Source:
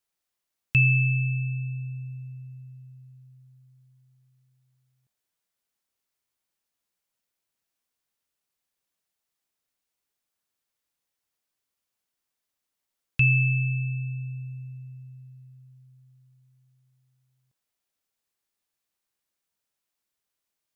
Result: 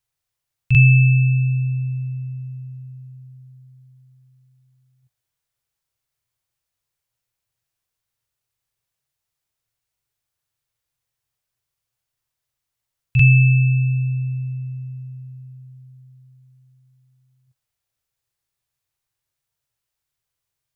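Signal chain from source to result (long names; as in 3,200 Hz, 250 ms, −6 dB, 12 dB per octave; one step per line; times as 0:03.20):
low shelf with overshoot 160 Hz +8 dB, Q 3
backwards echo 43 ms −7 dB
level +1 dB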